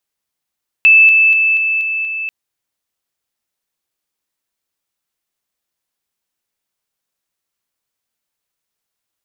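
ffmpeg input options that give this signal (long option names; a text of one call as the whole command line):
ffmpeg -f lavfi -i "aevalsrc='pow(10,(-4-3*floor(t/0.24))/20)*sin(2*PI*2630*t)':duration=1.44:sample_rate=44100" out.wav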